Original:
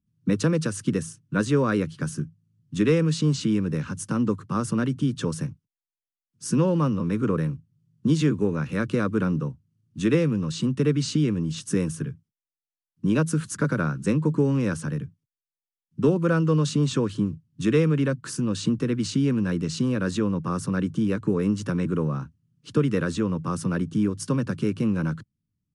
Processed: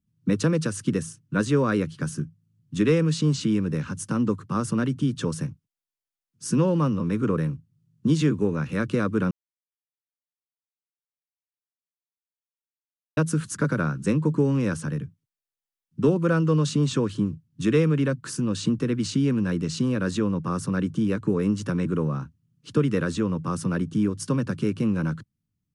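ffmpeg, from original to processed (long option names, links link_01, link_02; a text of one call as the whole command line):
ffmpeg -i in.wav -filter_complex "[0:a]asplit=3[link_01][link_02][link_03];[link_01]atrim=end=9.31,asetpts=PTS-STARTPTS,afade=type=out:start_time=9.306:duration=0.004:curve=hsin[link_04];[link_02]atrim=start=9.31:end=13.17,asetpts=PTS-STARTPTS,volume=0[link_05];[link_03]atrim=start=13.17,asetpts=PTS-STARTPTS,afade=type=in:duration=0.004:curve=hsin[link_06];[link_04][link_05][link_06]concat=n=3:v=0:a=1" out.wav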